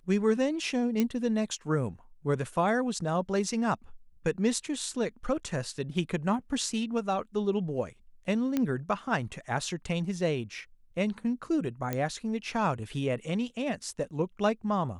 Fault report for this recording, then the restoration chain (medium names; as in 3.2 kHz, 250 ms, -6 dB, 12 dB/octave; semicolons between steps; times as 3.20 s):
1.00 s: pop -14 dBFS
8.57 s: pop -15 dBFS
11.93 s: pop -16 dBFS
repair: de-click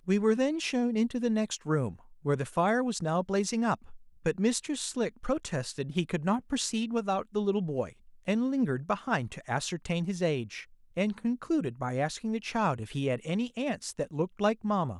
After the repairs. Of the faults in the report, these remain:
nothing left